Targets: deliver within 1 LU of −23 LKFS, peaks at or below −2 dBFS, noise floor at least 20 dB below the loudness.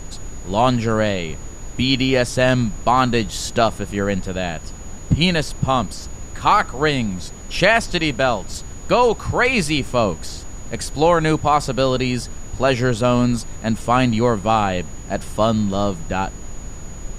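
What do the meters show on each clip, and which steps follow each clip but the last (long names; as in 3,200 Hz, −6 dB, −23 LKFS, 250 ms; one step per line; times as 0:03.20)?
interfering tone 6,800 Hz; level of the tone −41 dBFS; background noise floor −34 dBFS; target noise floor −40 dBFS; integrated loudness −19.5 LKFS; sample peak −2.0 dBFS; target loudness −23.0 LKFS
→ notch filter 6,800 Hz, Q 30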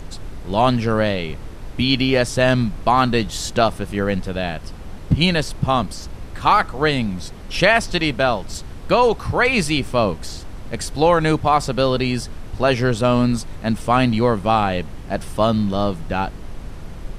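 interfering tone none found; background noise floor −34 dBFS; target noise floor −40 dBFS
→ noise reduction from a noise print 6 dB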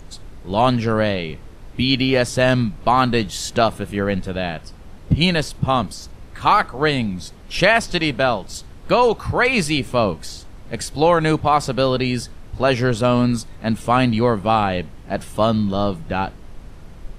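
background noise floor −40 dBFS; integrated loudness −19.5 LKFS; sample peak −2.0 dBFS; target loudness −23.0 LKFS
→ level −3.5 dB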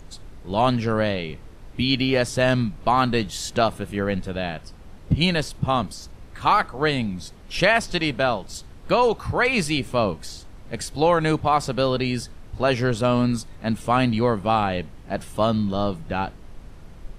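integrated loudness −23.0 LKFS; sample peak −5.5 dBFS; background noise floor −43 dBFS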